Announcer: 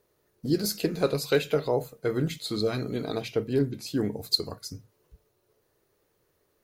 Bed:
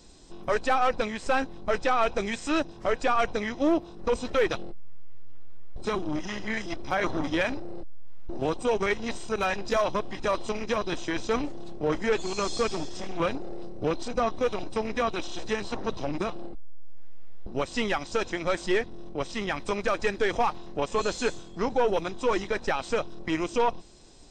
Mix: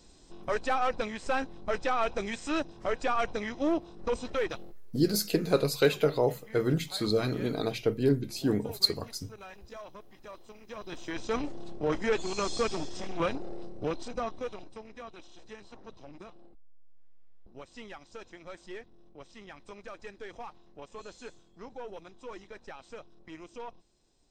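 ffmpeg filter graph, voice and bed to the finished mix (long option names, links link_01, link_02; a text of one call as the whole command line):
ffmpeg -i stem1.wav -i stem2.wav -filter_complex "[0:a]adelay=4500,volume=0dB[link_01];[1:a]volume=13dB,afade=type=out:start_time=4.16:duration=1:silence=0.16788,afade=type=in:start_time=10.65:duration=0.87:silence=0.133352,afade=type=out:start_time=13.48:duration=1.36:silence=0.16788[link_02];[link_01][link_02]amix=inputs=2:normalize=0" out.wav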